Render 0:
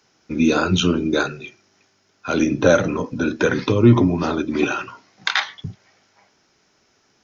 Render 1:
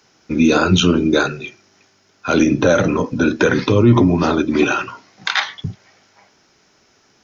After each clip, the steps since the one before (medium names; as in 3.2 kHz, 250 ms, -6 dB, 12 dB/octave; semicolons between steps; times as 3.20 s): peak limiter -9.5 dBFS, peak gain reduction 7 dB; trim +5.5 dB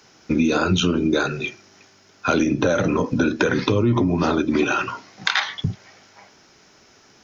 compression 5:1, threshold -20 dBFS, peak gain reduction 11.5 dB; trim +3.5 dB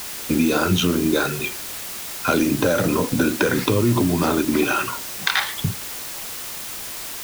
added noise white -32 dBFS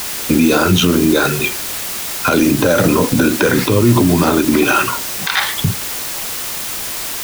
peak limiter -11.5 dBFS, peak gain reduction 10 dB; trim +8.5 dB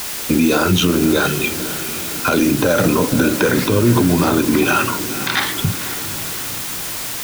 echo that smears into a reverb 509 ms, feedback 59%, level -13 dB; trim -2.5 dB